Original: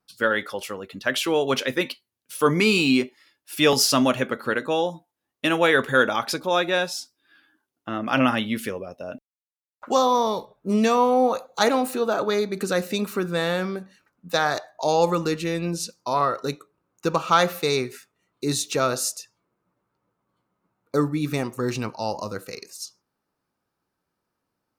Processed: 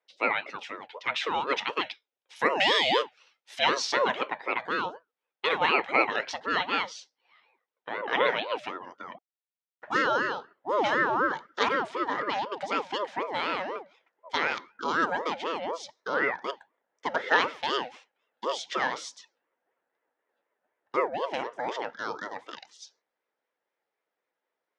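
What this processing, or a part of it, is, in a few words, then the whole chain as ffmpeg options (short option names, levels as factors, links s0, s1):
voice changer toy: -filter_complex "[0:a]aeval=exprs='val(0)*sin(2*PI*600*n/s+600*0.4/4*sin(2*PI*4*n/s))':c=same,highpass=440,equalizer=f=480:t=q:w=4:g=4,equalizer=f=680:t=q:w=4:g=-3,equalizer=f=1100:t=q:w=4:g=-5,equalizer=f=4500:t=q:w=4:g=-7,lowpass=f=4900:w=0.5412,lowpass=f=4900:w=1.3066,asettb=1/sr,asplit=3[s0][s1][s2];[s0]atrim=end=2.364[s3];[s1]atrim=start=2.36:end=3.59,asetpts=PTS-STARTPTS,afade=t=in:d=0.004:c=qsin,afade=t=out:st=1.226:d=0.004:c=qsin,aemphasis=mode=production:type=50fm[s4];[s2]atrim=start=3.586[s5];[s3][s4]acrossfade=d=0.004:c1=hsin:c2=qsin[s6];[s6][s5]acrossfade=d=0.004:c1=qsin:c2=hsin"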